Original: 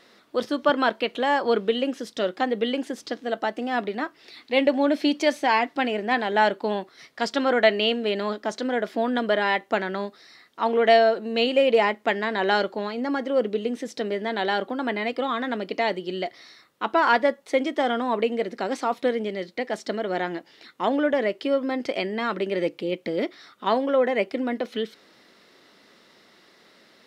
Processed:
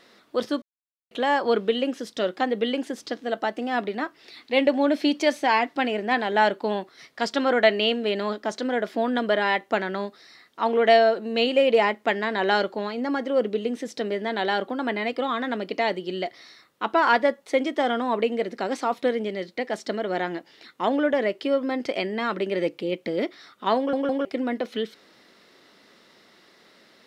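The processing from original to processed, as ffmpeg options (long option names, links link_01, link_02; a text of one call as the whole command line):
ffmpeg -i in.wav -filter_complex "[0:a]asplit=6[link_01][link_02][link_03][link_04][link_05][link_06];[link_01]atrim=end=0.62,asetpts=PTS-STARTPTS,afade=type=out:start_time=0.616:duration=0.004:curve=hsin[link_07];[link_02]atrim=start=0.62:end=1.11,asetpts=PTS-STARTPTS,volume=0[link_08];[link_03]atrim=start=1.11:end=23.932,asetpts=PTS-STARTPTS,afade=type=in:duration=0.004:curve=hsin[link_09];[link_04]atrim=start=23.768:end=23.932[link_10];[link_05]atrim=start=23.768:end=23.932[link_11];[link_06]atrim=start=24.248[link_12];[link_07][link_08][link_09]concat=n=3:v=0:a=1[link_13];[link_13][link_10]acrossfade=duration=0.004:curve1=hsin:curve2=hsin[link_14];[link_14][link_11]acrossfade=duration=0.004:curve1=hsin:curve2=hsin[link_15];[link_15][link_12]acrossfade=duration=0.004:curve1=hsin:curve2=hsin" out.wav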